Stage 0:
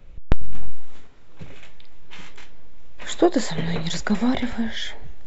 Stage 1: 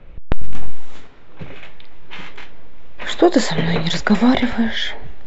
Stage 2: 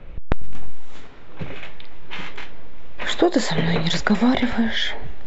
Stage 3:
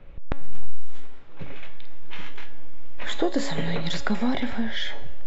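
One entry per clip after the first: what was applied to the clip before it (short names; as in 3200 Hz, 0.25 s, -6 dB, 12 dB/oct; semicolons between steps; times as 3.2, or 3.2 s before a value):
low-pass opened by the level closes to 2600 Hz, open at -9 dBFS; low shelf 160 Hz -5.5 dB; maximiser +9 dB
compressor 2:1, threshold -21 dBFS, peak gain reduction 9 dB; gain +2.5 dB
resonator 280 Hz, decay 0.84 s, mix 70%; gain +2.5 dB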